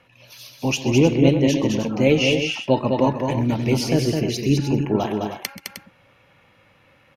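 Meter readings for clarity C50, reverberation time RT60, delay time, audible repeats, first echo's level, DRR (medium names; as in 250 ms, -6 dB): no reverb, no reverb, 130 ms, 3, -15.5 dB, no reverb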